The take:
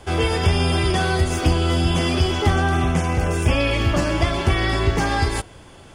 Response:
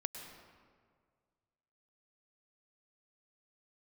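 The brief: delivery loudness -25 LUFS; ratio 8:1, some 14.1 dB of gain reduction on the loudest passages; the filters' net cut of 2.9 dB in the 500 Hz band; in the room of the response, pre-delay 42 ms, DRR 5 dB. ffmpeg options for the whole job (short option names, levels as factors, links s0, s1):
-filter_complex "[0:a]equalizer=f=500:t=o:g=-4,acompressor=threshold=0.0398:ratio=8,asplit=2[s0][s1];[1:a]atrim=start_sample=2205,adelay=42[s2];[s1][s2]afir=irnorm=-1:irlink=0,volume=0.596[s3];[s0][s3]amix=inputs=2:normalize=0,volume=2.11"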